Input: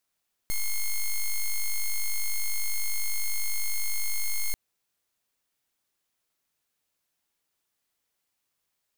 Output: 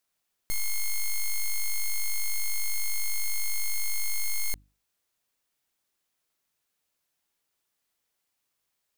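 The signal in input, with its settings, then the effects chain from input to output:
pulse 2.15 kHz, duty 5% -25.5 dBFS 4.04 s
hum notches 50/100/150/200/250/300 Hz

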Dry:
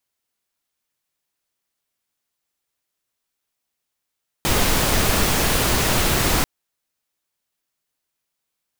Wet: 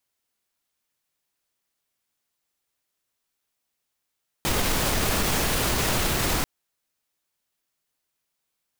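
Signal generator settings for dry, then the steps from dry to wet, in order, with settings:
noise pink, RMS -18.5 dBFS 1.99 s
peak limiter -14.5 dBFS

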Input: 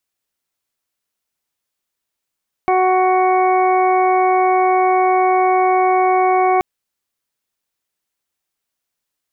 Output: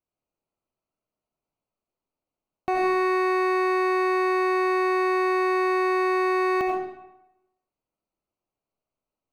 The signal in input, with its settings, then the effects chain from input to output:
steady additive tone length 3.93 s, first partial 371 Hz, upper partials 3/-4/-18/-20/-9 dB, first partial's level -16.5 dB
local Wiener filter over 25 samples; peak limiter -17.5 dBFS; algorithmic reverb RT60 0.91 s, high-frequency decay 0.8×, pre-delay 45 ms, DRR -0.5 dB

